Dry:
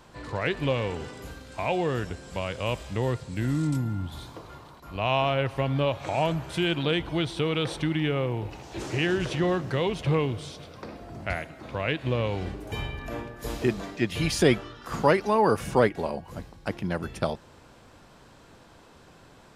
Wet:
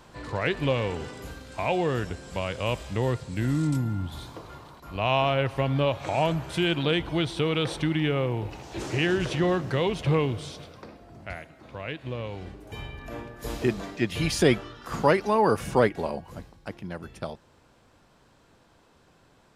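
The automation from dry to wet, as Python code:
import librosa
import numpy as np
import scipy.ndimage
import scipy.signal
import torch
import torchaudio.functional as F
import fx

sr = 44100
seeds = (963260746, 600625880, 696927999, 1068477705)

y = fx.gain(x, sr, db=fx.line((10.59, 1.0), (10.99, -7.0), (12.6, -7.0), (13.54, 0.0), (16.18, 0.0), (16.75, -7.0)))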